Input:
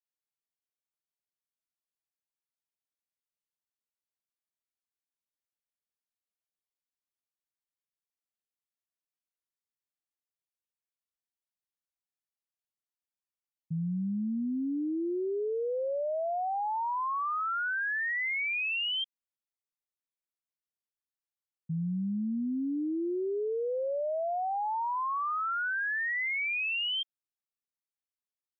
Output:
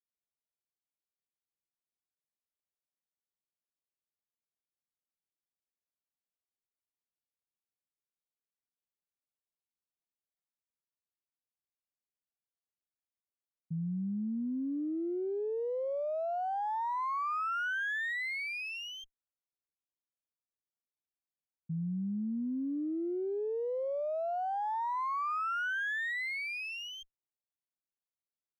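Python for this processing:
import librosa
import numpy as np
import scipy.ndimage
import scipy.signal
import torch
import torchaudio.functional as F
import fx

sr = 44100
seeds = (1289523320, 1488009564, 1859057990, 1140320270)

y = scipy.signal.sosfilt(scipy.signal.cheby1(2, 1.0, 1800.0, 'lowpass', fs=sr, output='sos'), x)
y = fx.env_lowpass(y, sr, base_hz=710.0, full_db=-31.5)
y = fx.running_max(y, sr, window=3)
y = y * librosa.db_to_amplitude(-2.0)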